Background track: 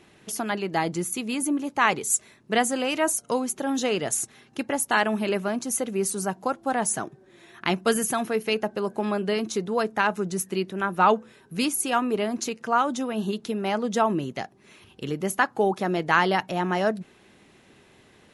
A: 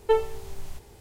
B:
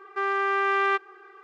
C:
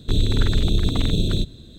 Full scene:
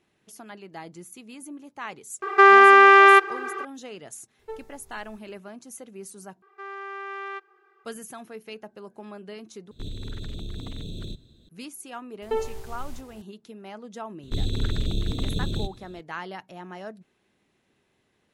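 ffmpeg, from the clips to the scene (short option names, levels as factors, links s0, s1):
-filter_complex "[2:a]asplit=2[s0][s1];[1:a]asplit=2[s2][s3];[3:a]asplit=2[s4][s5];[0:a]volume=0.178[s6];[s0]alimiter=level_in=8.91:limit=0.891:release=50:level=0:latency=1[s7];[s2]equalizer=f=3000:w=6.6:g=-12[s8];[s4]alimiter=limit=0.2:level=0:latency=1:release=23[s9];[s3]alimiter=limit=0.15:level=0:latency=1:release=71[s10];[s6]asplit=3[s11][s12][s13];[s11]atrim=end=6.424[s14];[s1]atrim=end=1.43,asetpts=PTS-STARTPTS,volume=0.251[s15];[s12]atrim=start=7.846:end=9.714[s16];[s9]atrim=end=1.78,asetpts=PTS-STARTPTS,volume=0.224[s17];[s13]atrim=start=11.486[s18];[s7]atrim=end=1.43,asetpts=PTS-STARTPTS,volume=0.794,afade=t=in:d=0.004:c=hsin,afade=t=out:st=1.426:d=0.004:c=hsin,adelay=2220[s19];[s8]atrim=end=1,asetpts=PTS-STARTPTS,volume=0.15,afade=t=in:d=0.004:c=hsin,afade=t=out:st=0.996:d=0.004:c=hsin,adelay=4390[s20];[s10]atrim=end=1,asetpts=PTS-STARTPTS,volume=0.891,afade=t=in:d=0.004:c=hsin,afade=t=out:st=0.996:d=0.004:c=hsin,adelay=12220[s21];[s5]atrim=end=1.78,asetpts=PTS-STARTPTS,volume=0.422,afade=t=in:d=0.004:c=hsin,afade=t=out:st=1.776:d=0.004:c=hsin,adelay=14230[s22];[s14][s15]acrossfade=d=0.004:c1=hsin:c2=hsin[s23];[s23][s16]acrossfade=d=0.004:c1=hsin:c2=hsin[s24];[s24][s17]acrossfade=d=0.004:c1=hsin:c2=hsin[s25];[s25][s18]acrossfade=d=0.004:c1=hsin:c2=hsin[s26];[s26][s19][s20][s21][s22]amix=inputs=5:normalize=0"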